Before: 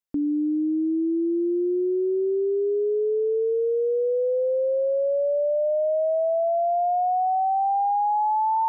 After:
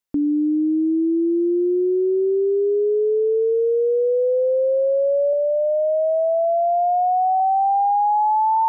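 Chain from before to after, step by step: 5.33–7.4 tilt shelf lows -5 dB, about 780 Hz; gain +4.5 dB

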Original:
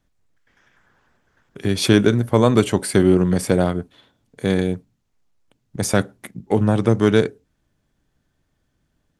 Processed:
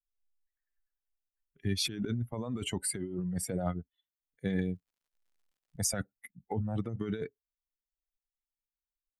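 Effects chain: per-bin expansion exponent 2; negative-ratio compressor -26 dBFS, ratio -1; 4.69–5.89 crackle 99/s -60 dBFS; gain -7.5 dB

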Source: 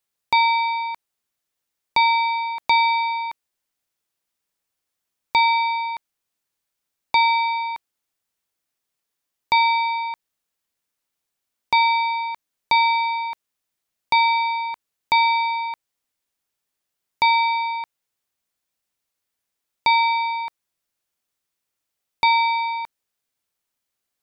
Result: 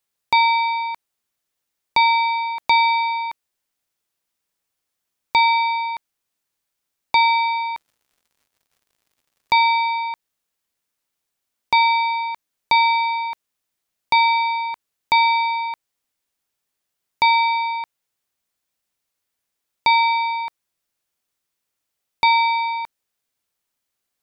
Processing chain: 7.17–9.66 crackle 140/s -53 dBFS; gain +1.5 dB

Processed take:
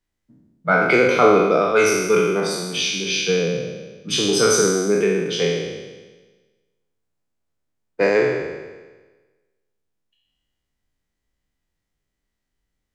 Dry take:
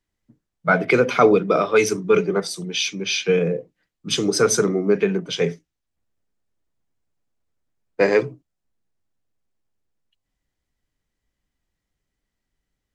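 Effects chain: spectral trails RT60 1.31 s; notches 60/120 Hz; gain -2.5 dB

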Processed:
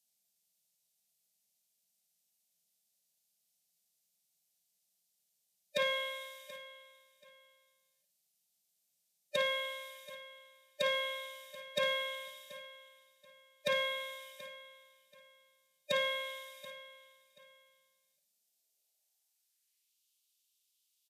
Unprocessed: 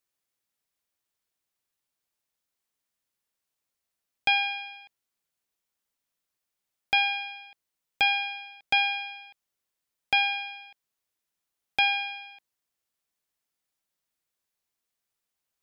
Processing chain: tone controls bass -2 dB, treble +11 dB; fixed phaser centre 460 Hz, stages 6; formant-preserving pitch shift -2 st; doubler 40 ms -10 dB; soft clip -19 dBFS, distortion -18 dB; feedback echo 0.542 s, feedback 26%, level -17 dB; reverb RT60 0.40 s, pre-delay 7 ms, DRR 12 dB; high-pass sweep 220 Hz -> 4000 Hz, 13.48–14.81; speed mistake 45 rpm record played at 33 rpm; gain -5 dB

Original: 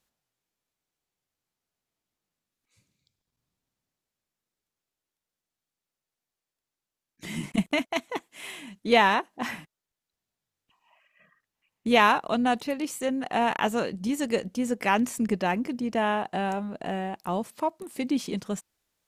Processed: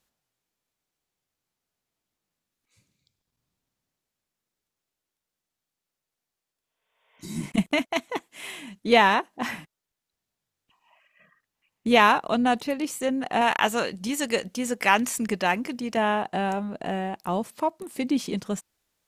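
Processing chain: 6.63–7.42 spectral repair 420–3700 Hz both; 13.41–15.97 tilt shelf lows -5 dB, about 680 Hz; gain +2 dB

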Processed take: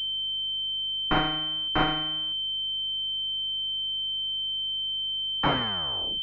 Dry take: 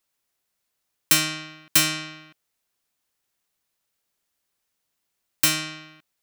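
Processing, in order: tape stop at the end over 0.79 s; low shelf 340 Hz -5 dB; gate with hold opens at -40 dBFS; hum 50 Hz, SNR 30 dB; in parallel at -6 dB: wavefolder -15 dBFS; on the sum: pulse-width modulation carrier 3100 Hz

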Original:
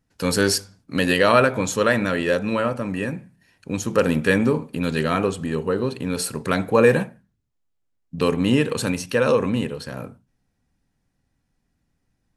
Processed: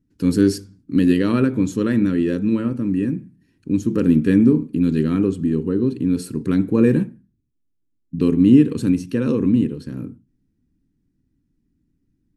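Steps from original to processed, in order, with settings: resonant low shelf 450 Hz +12.5 dB, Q 3; gain -10 dB

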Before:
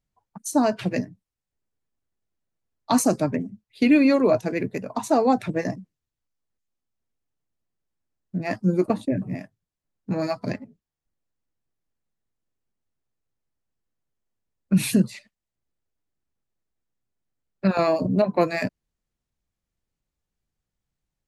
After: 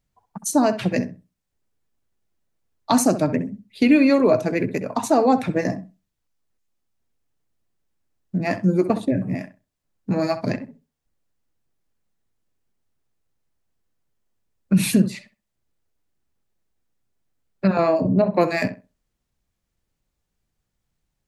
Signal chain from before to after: in parallel at 0 dB: compressor, threshold -28 dBFS, peak gain reduction 14.5 dB; 17.66–18.32 on the sum: high shelf 3600 Hz -> 2500 Hz -11 dB; darkening echo 65 ms, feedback 20%, low-pass 2300 Hz, level -11.5 dB

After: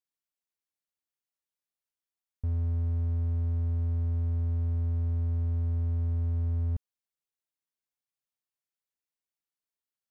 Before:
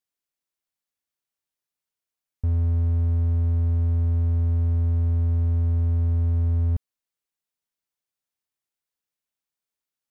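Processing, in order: gain -7 dB

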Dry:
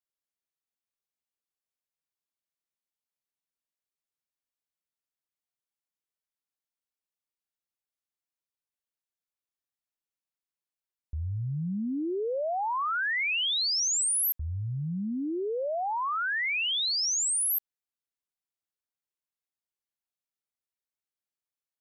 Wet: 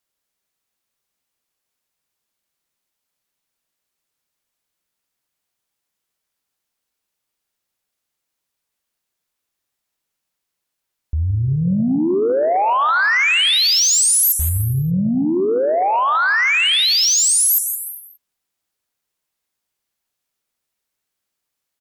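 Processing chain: echo 0.167 s -11 dB; non-linear reverb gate 0.43 s flat, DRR 11 dB; sine folder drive 4 dB, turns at -17.5 dBFS; gain +6 dB

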